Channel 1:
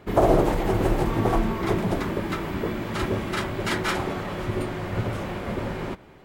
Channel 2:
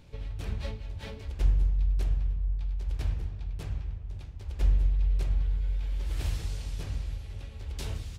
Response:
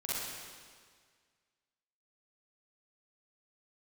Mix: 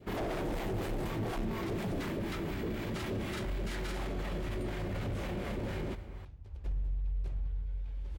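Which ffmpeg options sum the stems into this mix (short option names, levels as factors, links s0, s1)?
-filter_complex "[0:a]asoftclip=type=hard:threshold=0.0631,acrossover=split=680[s0][s1];[s0]aeval=exprs='val(0)*(1-0.5/2+0.5/2*cos(2*PI*4.1*n/s))':c=same[s2];[s1]aeval=exprs='val(0)*(1-0.5/2-0.5/2*cos(2*PI*4.1*n/s))':c=same[s3];[s2][s3]amix=inputs=2:normalize=0,volume=0.794,asplit=2[s4][s5];[s5]volume=0.0891[s6];[1:a]highshelf=f=2400:g=-11,adelay=2050,volume=0.398[s7];[2:a]atrim=start_sample=2205[s8];[s6][s8]afir=irnorm=-1:irlink=0[s9];[s4][s7][s9]amix=inputs=3:normalize=0,adynamicequalizer=threshold=0.00316:dfrequency=1100:dqfactor=1.1:tfrequency=1100:tqfactor=1.1:attack=5:release=100:ratio=0.375:range=3:mode=cutabove:tftype=bell,alimiter=level_in=1.78:limit=0.0631:level=0:latency=1:release=11,volume=0.562"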